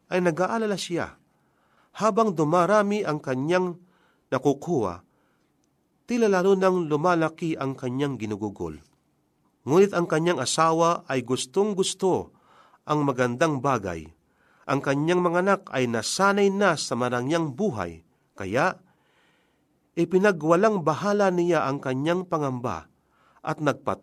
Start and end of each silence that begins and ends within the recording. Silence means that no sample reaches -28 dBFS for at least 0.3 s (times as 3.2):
1.06–1.99
3.71–4.32
4.95–6.1
8.72–9.67
12.22–12.88
13.99–14.68
17.89–18.38
18.71–19.98
22.79–23.45